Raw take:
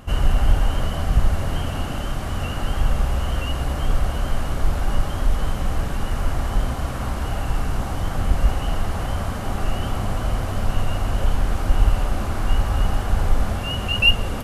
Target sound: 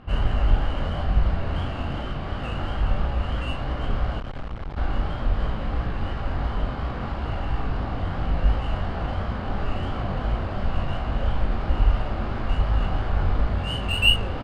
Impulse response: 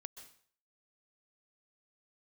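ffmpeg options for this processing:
-filter_complex "[0:a]aresample=11025,aresample=44100,adynamicsmooth=sensitivity=4.5:basefreq=3.2k,flanger=delay=16.5:depth=6.4:speed=2.9,asplit=2[a][b];[b]adelay=36,volume=-6dB[c];[a][c]amix=inputs=2:normalize=0,asplit=3[d][e][f];[d]afade=t=out:st=4.18:d=0.02[g];[e]aeval=exprs='(tanh(28.2*val(0)+0.7)-tanh(0.7))/28.2':c=same,afade=t=in:st=4.18:d=0.02,afade=t=out:st=4.76:d=0.02[h];[f]afade=t=in:st=4.76:d=0.02[i];[g][h][i]amix=inputs=3:normalize=0"

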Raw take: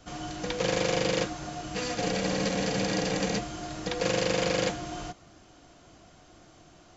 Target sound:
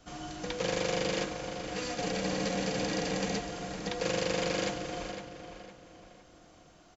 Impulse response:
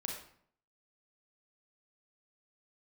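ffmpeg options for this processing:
-filter_complex "[0:a]equalizer=f=110:t=o:w=0.37:g=-5,asplit=2[a][b];[b]adelay=508,lowpass=f=4.6k:p=1,volume=-8.5dB,asplit=2[c][d];[d]adelay=508,lowpass=f=4.6k:p=1,volume=0.39,asplit=2[e][f];[f]adelay=508,lowpass=f=4.6k:p=1,volume=0.39,asplit=2[g][h];[h]adelay=508,lowpass=f=4.6k:p=1,volume=0.39[i];[c][e][g][i]amix=inputs=4:normalize=0[j];[a][j]amix=inputs=2:normalize=0,volume=-4dB"

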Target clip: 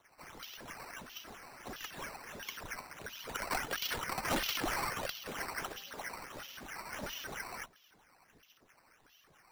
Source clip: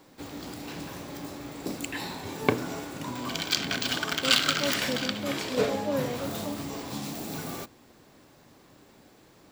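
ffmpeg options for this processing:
-filter_complex "[0:a]aphaser=in_gain=1:out_gain=1:delay=3.4:decay=0.61:speed=0.35:type=triangular,asettb=1/sr,asplit=3[a][b][c];[a]atrim=end=6.254[d];[b]atrim=start=6.25:end=6.75,asetpts=PTS-STARTPTS,afade=t=in:d=0.004:c=qsin,afade=t=out:st=0.496:d=0.004:c=qsin,asoftclip=type=hard:threshold=-35.5dB[e];[c]atrim=start=6.746[f];[d][e]acrossfade=d=0.004:c1=hsin:c2=qsin[g];[g][f]acrossfade=d=0.004:c1=qsin:c2=hsin,bandpass=f=5.8k:t=q:w=12:csg=0,acrusher=samples=9:mix=1:aa=0.000001:lfo=1:lforange=9:lforate=1.5,afreqshift=-39,asoftclip=type=tanh:threshold=-38dB,volume=10dB"

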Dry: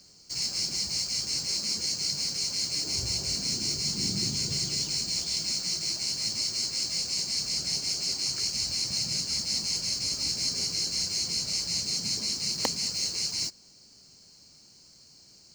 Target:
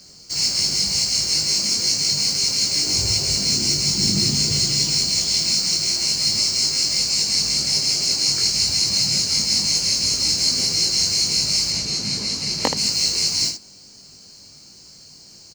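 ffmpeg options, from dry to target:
-filter_complex "[0:a]asettb=1/sr,asplit=3[a][b][c];[a]atrim=end=11.704[d];[b]atrim=start=11.7:end=12.77,asetpts=PTS-STARTPTS,afade=t=in:d=0.004:c=qsin,afade=t=out:st=1.066:d=0.004:c=qsin,aemphasis=mode=reproduction:type=cd[e];[c]atrim=start=12.766[f];[d][e]acrossfade=d=0.004:c1=hsin:c2=qsin[g];[g][f]acrossfade=d=0.004:c1=qsin:c2=hsin,aecho=1:1:20|77:0.631|0.447,volume=8dB"

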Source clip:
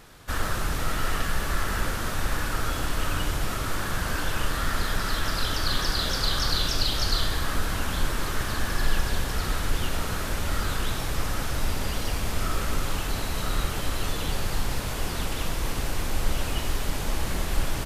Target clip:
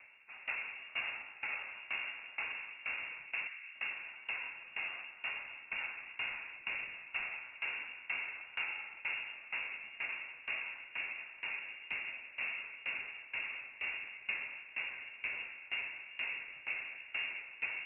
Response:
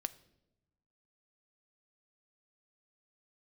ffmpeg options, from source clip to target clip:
-filter_complex "[0:a]highpass=53,equalizer=f=360:w=0.91:g=14.5,bandreject=f=1.3k:w=5.9,aeval=exprs='val(0)*sin(2*PI*250*n/s)':c=same,flanger=delay=7:depth=10:regen=58:speed=1.2:shape=sinusoidal,asettb=1/sr,asplit=3[a][b][c];[a]atrim=end=3.474[d];[b]atrim=start=3.47:end=5.81,asetpts=PTS-STARTPTS,afade=t=in:d=0.004:c=qsin,afade=t=out:st=2.336:d=0.004:c=qsin,acrossover=split=470|1500[e][f][g];[e]adelay=40[h];[g]adelay=280[i];[h][f][i]amix=inputs=3:normalize=0,atrim=end_sample=103194[j];[c]atrim=start=5.806[k];[d][j]acrossfade=d=0.004:c1=hsin:c2=qsin[l];[l][k]acrossfade=d=0.004:c1=qsin:c2=hsin[m];[1:a]atrim=start_sample=2205[n];[m][n]afir=irnorm=-1:irlink=0,lowpass=f=2.4k:t=q:w=0.5098,lowpass=f=2.4k:t=q:w=0.6013,lowpass=f=2.4k:t=q:w=0.9,lowpass=f=2.4k:t=q:w=2.563,afreqshift=-2800,aeval=exprs='val(0)*pow(10,-20*if(lt(mod(2.1*n/s,1),2*abs(2.1)/1000),1-mod(2.1*n/s,1)/(2*abs(2.1)/1000),(mod(2.1*n/s,1)-2*abs(2.1)/1000)/(1-2*abs(2.1)/1000))/20)':c=same,volume=-2dB"

